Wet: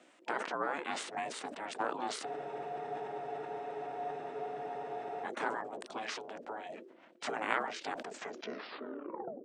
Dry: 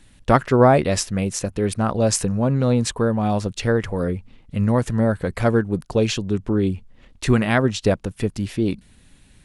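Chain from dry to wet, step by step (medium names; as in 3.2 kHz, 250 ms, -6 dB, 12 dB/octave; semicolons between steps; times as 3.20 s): tape stop on the ending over 1.46 s; compression 4:1, threshold -18 dBFS, peak gain reduction 8.5 dB; spectral gate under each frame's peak -10 dB weak; ring modulator 430 Hz; formant shift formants -3 st; high-pass 250 Hz 24 dB/octave; treble shelf 3.9 kHz -12 dB; spectral freeze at 2.28 s, 2.95 s; decay stretcher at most 67 dB/s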